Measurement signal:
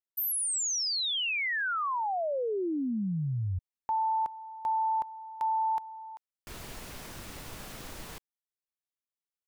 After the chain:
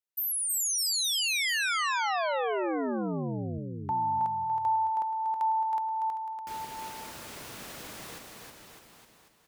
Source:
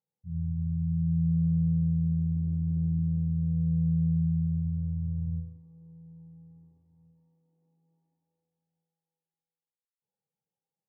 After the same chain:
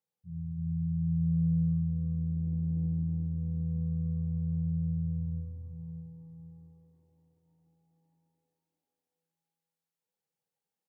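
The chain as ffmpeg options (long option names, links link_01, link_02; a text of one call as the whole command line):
ffmpeg -i in.wav -filter_complex "[0:a]highpass=frequency=210:poles=1,asplit=2[link_01][link_02];[link_02]aecho=0:1:320|608|867.2|1100|1310:0.631|0.398|0.251|0.158|0.1[link_03];[link_01][link_03]amix=inputs=2:normalize=0" out.wav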